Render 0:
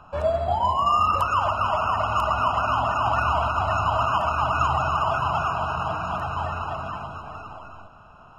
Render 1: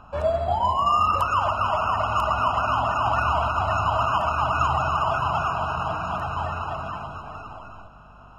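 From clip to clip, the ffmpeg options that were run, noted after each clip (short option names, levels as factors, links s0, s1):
-af "aeval=exprs='val(0)+0.00282*(sin(2*PI*50*n/s)+sin(2*PI*2*50*n/s)/2+sin(2*PI*3*50*n/s)/3+sin(2*PI*4*50*n/s)/4+sin(2*PI*5*50*n/s)/5)':c=same"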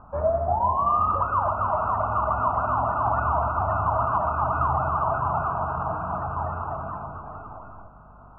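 -af "lowpass=f=1300:w=0.5412,lowpass=f=1300:w=1.3066"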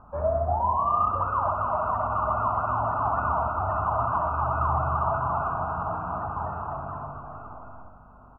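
-af "aecho=1:1:64|128|192|256|320|384:0.447|0.237|0.125|0.0665|0.0352|0.0187,volume=0.708"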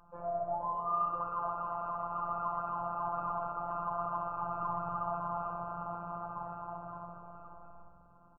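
-filter_complex "[0:a]afftfilt=real='hypot(re,im)*cos(PI*b)':imag='0':win_size=1024:overlap=0.75,asplit=7[s0][s1][s2][s3][s4][s5][s6];[s1]adelay=122,afreqshift=-65,volume=0.126[s7];[s2]adelay=244,afreqshift=-130,volume=0.0794[s8];[s3]adelay=366,afreqshift=-195,volume=0.0501[s9];[s4]adelay=488,afreqshift=-260,volume=0.0316[s10];[s5]adelay=610,afreqshift=-325,volume=0.0197[s11];[s6]adelay=732,afreqshift=-390,volume=0.0124[s12];[s0][s7][s8][s9][s10][s11][s12]amix=inputs=7:normalize=0,volume=0.447"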